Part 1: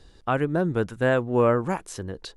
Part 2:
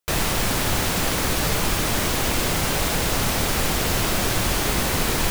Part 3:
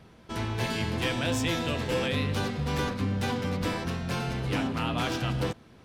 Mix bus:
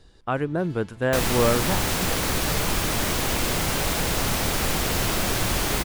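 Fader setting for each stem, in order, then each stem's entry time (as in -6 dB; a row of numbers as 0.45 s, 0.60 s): -1.5 dB, -2.0 dB, -19.0 dB; 0.00 s, 1.05 s, 0.00 s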